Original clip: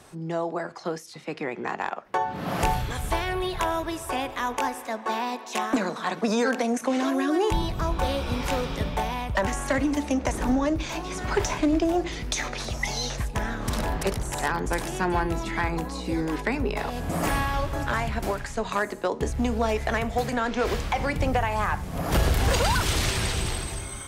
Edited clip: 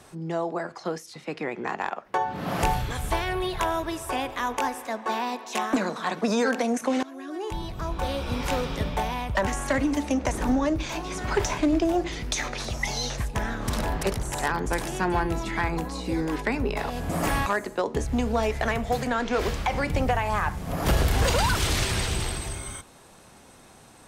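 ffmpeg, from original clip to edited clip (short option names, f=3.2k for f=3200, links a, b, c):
-filter_complex "[0:a]asplit=3[a][b][c];[a]atrim=end=7.03,asetpts=PTS-STARTPTS,afade=t=out:st=7.026:d=0.004:c=hsin:silence=0.0944061[d];[b]atrim=start=7.03:end=17.462,asetpts=PTS-STARTPTS,afade=t=in:d=1.47:silence=0.0944061[e];[c]atrim=start=18.718[f];[d][e]concat=n=2:v=0:a=1[g];[g][f]acrossfade=d=0.004:c1=hsin:c2=hsin"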